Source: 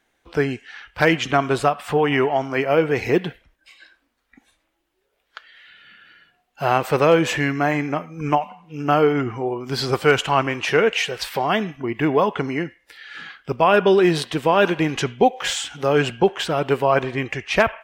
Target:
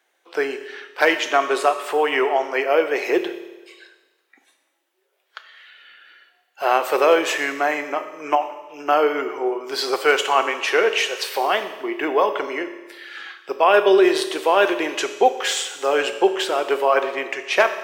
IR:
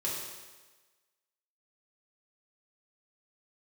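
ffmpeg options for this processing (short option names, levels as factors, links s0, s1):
-filter_complex "[0:a]highpass=f=370:w=0.5412,highpass=f=370:w=1.3066,asplit=2[s0][s1];[1:a]atrim=start_sample=2205,highshelf=f=8100:g=9.5[s2];[s1][s2]afir=irnorm=-1:irlink=0,volume=0.282[s3];[s0][s3]amix=inputs=2:normalize=0,volume=0.891"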